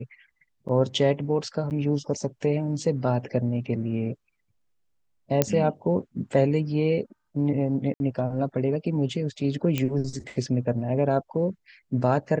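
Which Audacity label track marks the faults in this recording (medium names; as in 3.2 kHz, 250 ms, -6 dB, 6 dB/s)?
0.680000	0.690000	dropout 7 ms
1.700000	1.710000	dropout 8.8 ms
5.420000	5.420000	pop -5 dBFS
7.940000	8.000000	dropout 61 ms
9.780000	9.780000	pop -12 dBFS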